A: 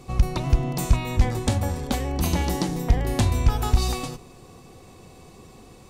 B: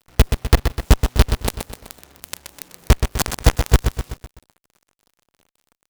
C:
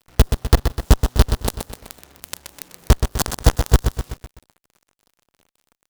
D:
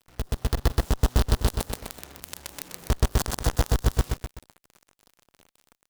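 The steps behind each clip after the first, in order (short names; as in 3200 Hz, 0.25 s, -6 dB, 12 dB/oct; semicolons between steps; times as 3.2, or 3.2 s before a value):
companded quantiser 2-bit; added harmonics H 3 -11 dB, 4 -7 dB, 7 -38 dB, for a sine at 0 dBFS; lo-fi delay 0.126 s, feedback 55%, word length 5-bit, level -7 dB; gain -6 dB
dynamic EQ 2300 Hz, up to -7 dB, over -44 dBFS, Q 2.3
compressor 10:1, threshold -14 dBFS, peak gain reduction 9 dB; limiter -14 dBFS, peak gain reduction 11.5 dB; AGC gain up to 7.5 dB; gain -4.5 dB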